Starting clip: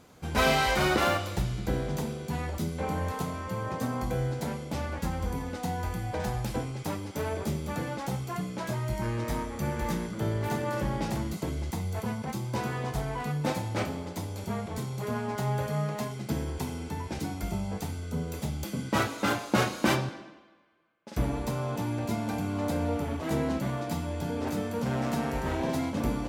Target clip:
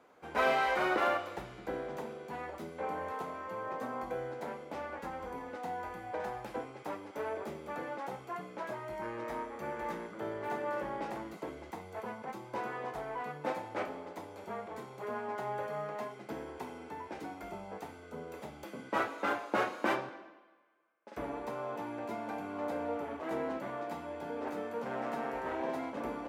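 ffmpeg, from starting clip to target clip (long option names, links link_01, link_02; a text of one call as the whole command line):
ffmpeg -i in.wav -filter_complex "[0:a]acrossover=split=310 2400:gain=0.0794 1 0.178[link_01][link_02][link_03];[link_01][link_02][link_03]amix=inputs=3:normalize=0,volume=-2.5dB" out.wav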